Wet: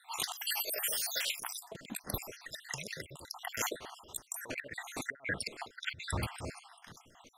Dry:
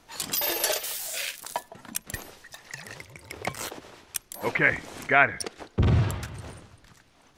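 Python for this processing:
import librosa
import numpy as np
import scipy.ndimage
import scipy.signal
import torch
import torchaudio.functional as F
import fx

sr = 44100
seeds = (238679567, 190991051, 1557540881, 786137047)

y = fx.spec_dropout(x, sr, seeds[0], share_pct=62)
y = fx.low_shelf(y, sr, hz=170.0, db=-6.0)
y = fx.over_compress(y, sr, threshold_db=-36.0, ratio=-0.5)
y = fx.doppler_dist(y, sr, depth_ms=0.32, at=(1.35, 1.86))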